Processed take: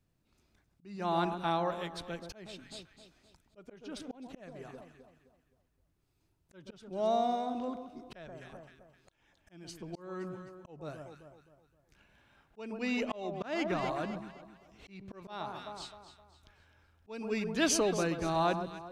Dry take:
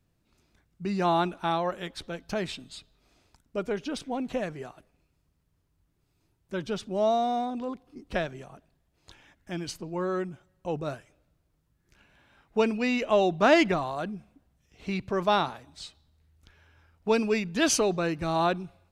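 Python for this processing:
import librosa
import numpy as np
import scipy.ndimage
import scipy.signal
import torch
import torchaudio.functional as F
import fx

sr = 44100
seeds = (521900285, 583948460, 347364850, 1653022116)

y = fx.echo_alternate(x, sr, ms=130, hz=1300.0, feedback_pct=60, wet_db=-8.5)
y = fx.auto_swell(y, sr, attack_ms=437.0)
y = y * librosa.db_to_amplitude(-4.5)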